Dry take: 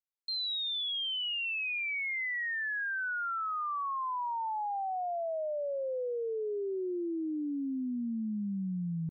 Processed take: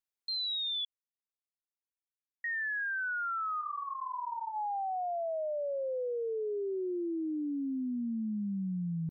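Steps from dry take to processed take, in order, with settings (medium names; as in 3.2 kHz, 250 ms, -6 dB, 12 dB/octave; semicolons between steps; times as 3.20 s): 0.85–2.44 s: mute; 3.61–4.56 s: detune thickener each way 52 cents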